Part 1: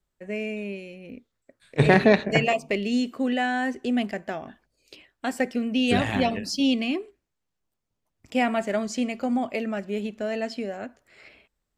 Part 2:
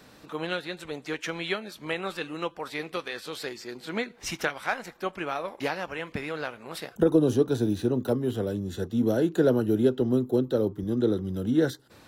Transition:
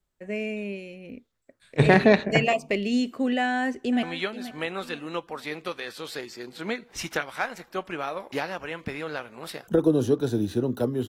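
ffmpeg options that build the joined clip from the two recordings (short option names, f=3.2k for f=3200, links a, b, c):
-filter_complex "[0:a]apad=whole_dur=11.08,atrim=end=11.08,atrim=end=4.032[a];[1:a]atrim=start=1.308:end=8.36[b];[a][b]acrossfade=d=0.004:c1=hsin:c2=hsin,asplit=2[c][d];[d]afade=t=in:st=3.44:d=0.01,afade=t=out:st=4.03:d=0.01,aecho=0:1:480|960|1440:0.211349|0.0739721|0.0258902[e];[c][e]amix=inputs=2:normalize=0"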